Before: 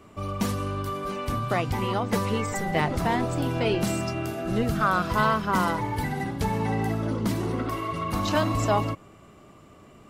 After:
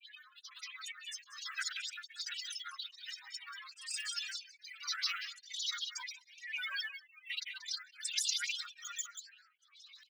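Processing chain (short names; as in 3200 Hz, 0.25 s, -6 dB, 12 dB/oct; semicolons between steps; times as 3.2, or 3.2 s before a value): spectral gate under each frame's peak -30 dB strong; brick-wall FIR band-pass 2400–5100 Hz; comb 4.9 ms, depth 72%; compressor 12:1, threshold -45 dBFS, peak gain reduction 17.5 dB; grains 0.1 s, grains 20/s, pitch spread up and down by 7 st; formant shift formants -3 st; grains, pitch spread up and down by 12 st; tilt +4 dB/oct; echo 0.185 s -10 dB; beating tremolo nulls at 1.2 Hz; gain +9.5 dB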